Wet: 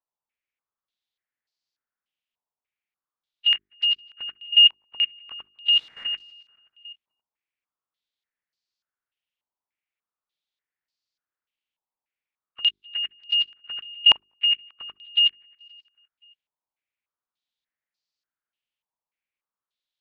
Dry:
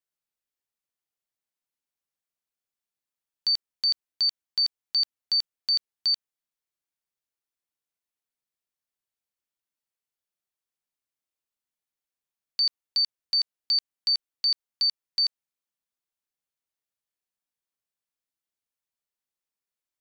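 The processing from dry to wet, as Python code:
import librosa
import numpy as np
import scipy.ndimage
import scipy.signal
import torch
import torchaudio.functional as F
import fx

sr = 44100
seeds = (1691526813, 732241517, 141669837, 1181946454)

y = fx.freq_compress(x, sr, knee_hz=1100.0, ratio=1.5)
y = fx.quant_dither(y, sr, seeds[0], bits=8, dither='triangular', at=(5.71, 6.13), fade=0.02)
y = fx.echo_feedback(y, sr, ms=263, feedback_pct=51, wet_db=-21.0)
y = fx.level_steps(y, sr, step_db=14)
y = fx.hum_notches(y, sr, base_hz=50, count=8)
y = fx.filter_held_lowpass(y, sr, hz=3.4, low_hz=950.0, high_hz=4600.0)
y = F.gain(torch.from_numpy(y), 4.5).numpy()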